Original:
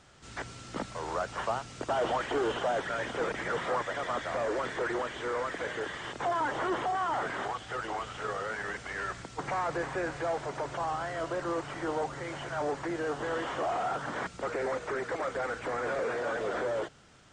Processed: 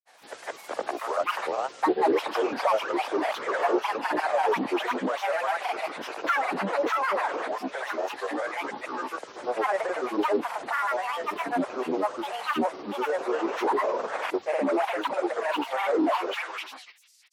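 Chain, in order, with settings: high-pass sweep 530 Hz -> 3.8 kHz, 16.10–16.83 s; granulator 100 ms, grains 20 per s, pitch spread up and down by 12 st; trim +2.5 dB

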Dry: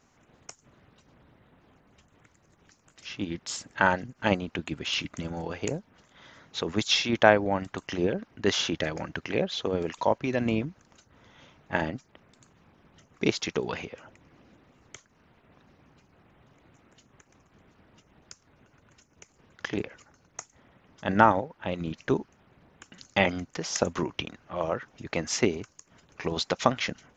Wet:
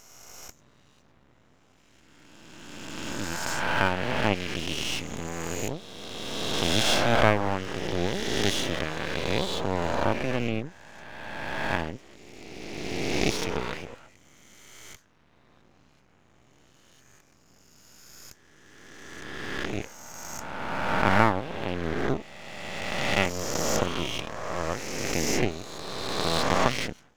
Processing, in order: reverse spectral sustain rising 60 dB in 2.42 s; half-wave rectifier; trim -1.5 dB

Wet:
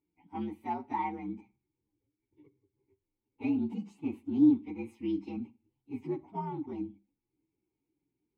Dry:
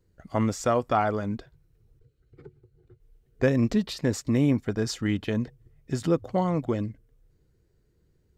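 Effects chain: frequency axis rescaled in octaves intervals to 121%; vowel filter u; on a send: bass shelf 330 Hz +6.5 dB + reverberation RT60 0.35 s, pre-delay 31 ms, DRR 18.5 dB; on the sum: trim +4.5 dB

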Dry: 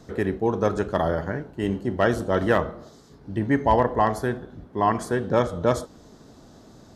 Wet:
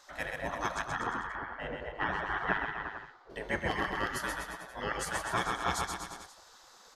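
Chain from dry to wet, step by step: 0.82–3.30 s: low-pass 2 kHz 12 dB/octave; bouncing-ball echo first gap 130 ms, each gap 0.9×, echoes 5; spectral gate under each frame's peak -15 dB weak

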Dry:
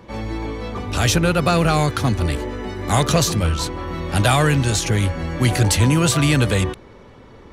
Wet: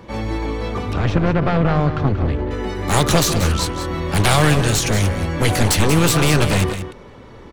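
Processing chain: one-sided wavefolder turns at -17.5 dBFS; 0.93–2.51 s: tape spacing loss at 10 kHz 38 dB; on a send: delay 184 ms -10 dB; on the sum: trim +3 dB

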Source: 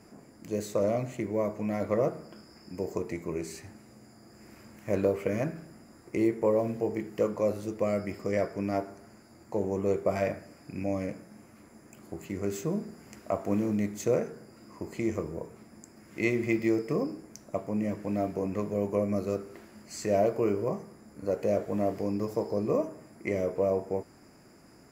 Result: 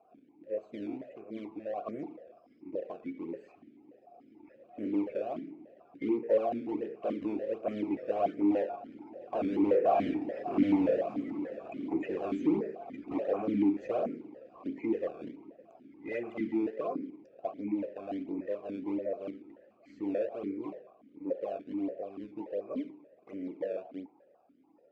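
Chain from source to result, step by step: coarse spectral quantiser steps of 30 dB; Doppler pass-by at 10.92 s, 7 m/s, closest 2.5 m; overdrive pedal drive 39 dB, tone 1.9 kHz, clips at -15.5 dBFS; in parallel at -4 dB: decimation with a swept rate 25×, swing 160% 1.4 Hz; on the sum: tilt EQ -2.5 dB/octave; feedback echo behind a band-pass 111 ms, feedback 48%, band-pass 1.1 kHz, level -18 dB; stepped vowel filter 6.9 Hz

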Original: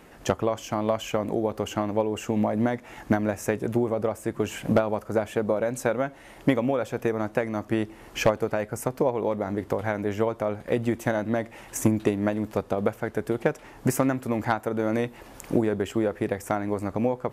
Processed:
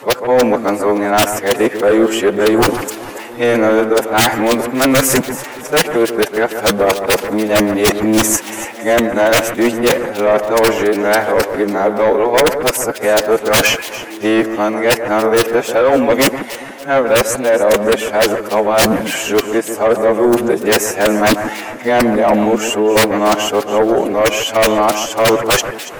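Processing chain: reverse the whole clip; high-pass 350 Hz 12 dB/octave; gain riding within 3 dB 2 s; integer overflow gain 14.5 dB; time stretch by phase-locked vocoder 1.5×; sine folder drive 12 dB, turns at -8 dBFS; echo whose repeats swap between lows and highs 142 ms, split 2 kHz, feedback 58%, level -9 dB; trim +1.5 dB

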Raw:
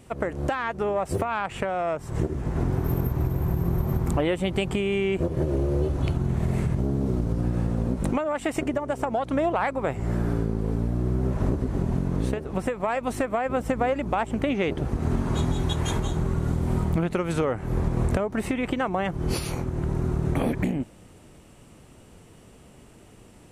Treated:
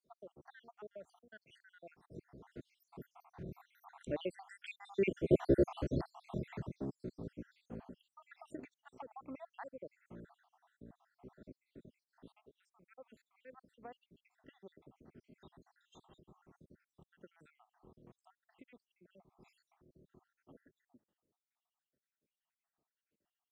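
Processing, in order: random holes in the spectrogram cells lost 75%; Doppler pass-by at 5.51 s, 5 m/s, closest 1.4 m; three-band isolator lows -15 dB, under 170 Hz, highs -12 dB, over 5.3 kHz; trim +3.5 dB

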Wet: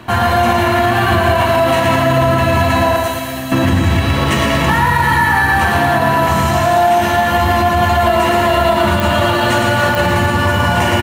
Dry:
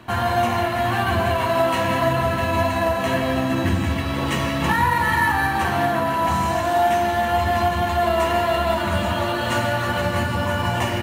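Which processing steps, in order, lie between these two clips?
2.96–3.52 s: pre-emphasis filter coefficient 0.8; feedback delay 114 ms, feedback 55%, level -5 dB; clicks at 9.00/9.95 s, -5 dBFS; loudness maximiser +11.5 dB; trim -3 dB

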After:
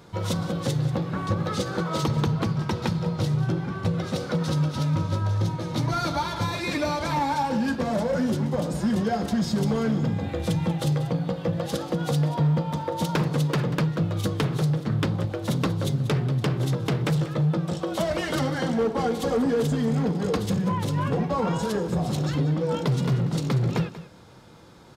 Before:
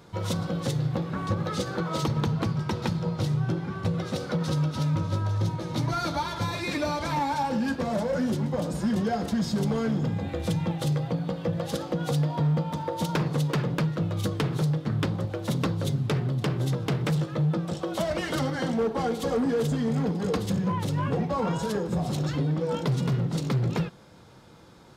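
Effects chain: delay 188 ms -14.5 dB; trim +2 dB

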